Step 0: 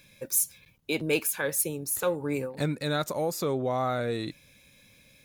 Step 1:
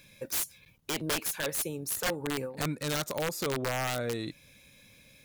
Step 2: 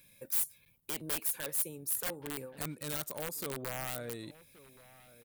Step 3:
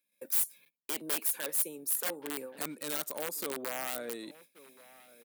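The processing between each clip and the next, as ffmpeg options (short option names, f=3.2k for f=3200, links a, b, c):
-filter_complex "[0:a]asplit=2[a][b];[b]acompressor=threshold=-38dB:ratio=4,volume=0dB[c];[a][c]amix=inputs=2:normalize=0,aeval=exprs='(mod(8.41*val(0)+1,2)-1)/8.41':c=same,volume=-5.5dB"
-filter_complex "[0:a]acrossover=split=4400[a][b];[a]aecho=1:1:1125:0.112[c];[b]aexciter=amount=1.8:drive=9.2:freq=8.2k[d];[c][d]amix=inputs=2:normalize=0,volume=-9dB"
-af "highpass=f=220:w=0.5412,highpass=f=220:w=1.3066,agate=range=-23dB:threshold=-59dB:ratio=16:detection=peak,volume=2.5dB"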